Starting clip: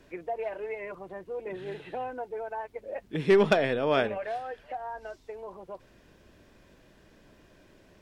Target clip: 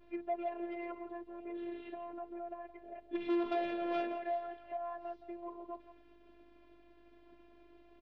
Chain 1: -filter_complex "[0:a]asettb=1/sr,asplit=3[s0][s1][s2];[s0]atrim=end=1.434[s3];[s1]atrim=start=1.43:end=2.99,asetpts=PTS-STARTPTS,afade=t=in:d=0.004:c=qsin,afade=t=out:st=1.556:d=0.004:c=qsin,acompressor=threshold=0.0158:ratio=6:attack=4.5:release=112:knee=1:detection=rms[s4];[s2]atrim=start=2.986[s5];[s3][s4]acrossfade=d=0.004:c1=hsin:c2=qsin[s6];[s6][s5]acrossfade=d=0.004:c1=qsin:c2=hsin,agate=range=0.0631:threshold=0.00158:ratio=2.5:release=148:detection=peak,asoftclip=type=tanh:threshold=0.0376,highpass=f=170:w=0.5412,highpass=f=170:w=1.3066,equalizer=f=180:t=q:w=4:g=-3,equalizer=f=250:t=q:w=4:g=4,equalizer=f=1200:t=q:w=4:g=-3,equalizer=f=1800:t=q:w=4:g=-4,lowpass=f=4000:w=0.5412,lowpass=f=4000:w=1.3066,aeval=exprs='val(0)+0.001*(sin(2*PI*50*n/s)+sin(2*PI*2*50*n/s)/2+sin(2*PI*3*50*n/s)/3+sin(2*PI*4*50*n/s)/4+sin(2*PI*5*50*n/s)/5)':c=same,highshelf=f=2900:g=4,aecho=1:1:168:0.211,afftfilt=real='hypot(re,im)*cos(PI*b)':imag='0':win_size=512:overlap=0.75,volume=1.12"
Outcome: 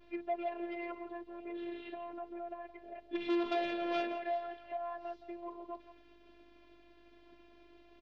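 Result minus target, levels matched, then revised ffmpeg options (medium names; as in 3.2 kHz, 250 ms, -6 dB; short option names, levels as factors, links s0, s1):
4 kHz band +6.0 dB
-filter_complex "[0:a]asettb=1/sr,asplit=3[s0][s1][s2];[s0]atrim=end=1.434[s3];[s1]atrim=start=1.43:end=2.99,asetpts=PTS-STARTPTS,afade=t=in:d=0.004:c=qsin,afade=t=out:st=1.556:d=0.004:c=qsin,acompressor=threshold=0.0158:ratio=6:attack=4.5:release=112:knee=1:detection=rms[s4];[s2]atrim=start=2.986[s5];[s3][s4]acrossfade=d=0.004:c1=hsin:c2=qsin[s6];[s6][s5]acrossfade=d=0.004:c1=qsin:c2=hsin,agate=range=0.0631:threshold=0.00158:ratio=2.5:release=148:detection=peak,asoftclip=type=tanh:threshold=0.0376,highpass=f=170:w=0.5412,highpass=f=170:w=1.3066,equalizer=f=180:t=q:w=4:g=-3,equalizer=f=250:t=q:w=4:g=4,equalizer=f=1200:t=q:w=4:g=-3,equalizer=f=1800:t=q:w=4:g=-4,lowpass=f=4000:w=0.5412,lowpass=f=4000:w=1.3066,aeval=exprs='val(0)+0.001*(sin(2*PI*50*n/s)+sin(2*PI*2*50*n/s)/2+sin(2*PI*3*50*n/s)/3+sin(2*PI*4*50*n/s)/4+sin(2*PI*5*50*n/s)/5)':c=same,highshelf=f=2900:g=-7.5,aecho=1:1:168:0.211,afftfilt=real='hypot(re,im)*cos(PI*b)':imag='0':win_size=512:overlap=0.75,volume=1.12"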